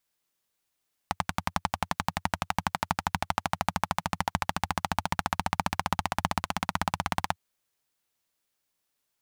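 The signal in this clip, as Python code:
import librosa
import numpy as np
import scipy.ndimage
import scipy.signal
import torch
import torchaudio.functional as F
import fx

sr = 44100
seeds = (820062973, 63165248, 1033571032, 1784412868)

y = fx.engine_single_rev(sr, seeds[0], length_s=6.25, rpm=1300, resonances_hz=(91.0, 170.0, 840.0), end_rpm=2000)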